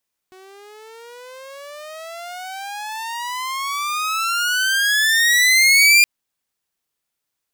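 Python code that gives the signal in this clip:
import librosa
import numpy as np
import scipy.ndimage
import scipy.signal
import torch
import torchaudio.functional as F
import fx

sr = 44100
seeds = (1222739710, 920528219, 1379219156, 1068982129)

y = fx.riser_tone(sr, length_s=5.72, level_db=-5.5, wave='saw', hz=370.0, rise_st=32.5, swell_db=34)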